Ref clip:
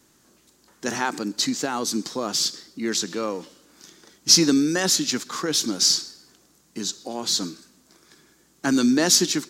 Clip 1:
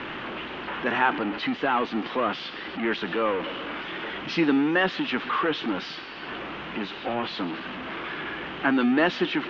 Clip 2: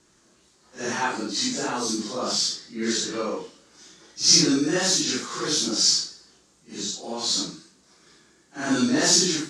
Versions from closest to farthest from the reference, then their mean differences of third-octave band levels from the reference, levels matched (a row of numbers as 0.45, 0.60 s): 2, 1; 5.0, 12.5 dB